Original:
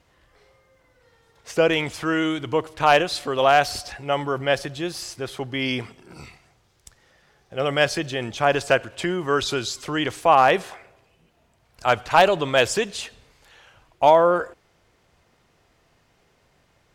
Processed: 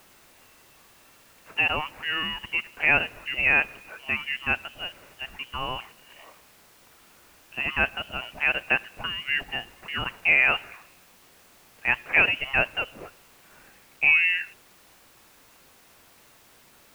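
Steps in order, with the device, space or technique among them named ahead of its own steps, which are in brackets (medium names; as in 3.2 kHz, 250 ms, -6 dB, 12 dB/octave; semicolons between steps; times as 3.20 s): scrambled radio voice (band-pass 330–3000 Hz; frequency inversion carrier 3.2 kHz; white noise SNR 24 dB); treble shelf 2.6 kHz -10 dB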